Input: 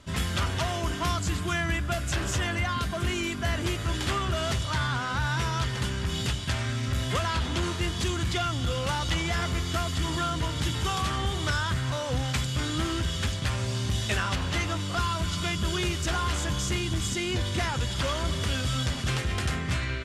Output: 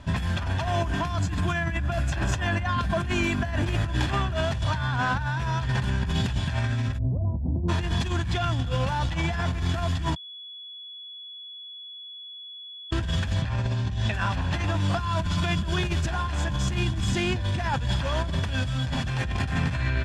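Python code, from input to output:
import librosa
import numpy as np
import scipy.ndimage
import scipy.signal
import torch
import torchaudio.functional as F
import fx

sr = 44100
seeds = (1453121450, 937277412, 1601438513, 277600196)

y = fx.gaussian_blur(x, sr, sigma=17.0, at=(6.97, 7.68), fade=0.02)
y = fx.air_absorb(y, sr, metres=62.0, at=(13.42, 14.14))
y = fx.echo_throw(y, sr, start_s=18.81, length_s=0.46, ms=490, feedback_pct=30, wet_db=-7.5)
y = fx.edit(y, sr, fx.bleep(start_s=10.16, length_s=2.75, hz=3390.0, db=-6.0), tone=tone)
y = fx.lowpass(y, sr, hz=2100.0, slope=6)
y = y + 0.48 * np.pad(y, (int(1.2 * sr / 1000.0), 0))[:len(y)]
y = fx.over_compress(y, sr, threshold_db=-30.0, ratio=-1.0)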